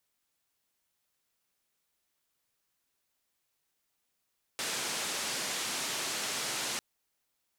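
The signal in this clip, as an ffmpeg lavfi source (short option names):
-f lavfi -i "anoisesrc=c=white:d=2.2:r=44100:seed=1,highpass=f=160,lowpass=f=7800,volume=-25.7dB"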